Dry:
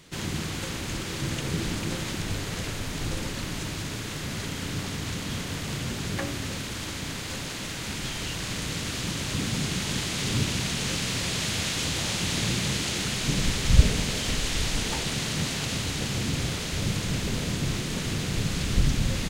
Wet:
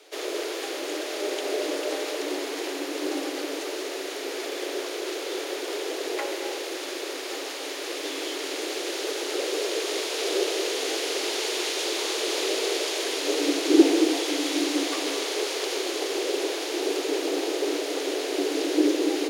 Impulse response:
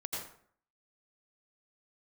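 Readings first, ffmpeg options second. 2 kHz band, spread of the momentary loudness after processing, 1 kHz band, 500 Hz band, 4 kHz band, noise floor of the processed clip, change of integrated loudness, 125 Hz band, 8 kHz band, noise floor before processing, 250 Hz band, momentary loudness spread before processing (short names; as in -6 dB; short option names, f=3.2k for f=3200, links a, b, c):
0.0 dB, 8 LU, +3.5 dB, +11.5 dB, +0.5 dB, -34 dBFS, +1.5 dB, under -40 dB, -1.0 dB, -34 dBFS, +4.0 dB, 6 LU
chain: -filter_complex "[0:a]afreqshift=270,equalizer=f=7.9k:w=4.8:g=-7,asplit=2[a][b];[1:a]atrim=start_sample=2205,adelay=135[c];[b][c]afir=irnorm=-1:irlink=0,volume=-9.5dB[d];[a][d]amix=inputs=2:normalize=0"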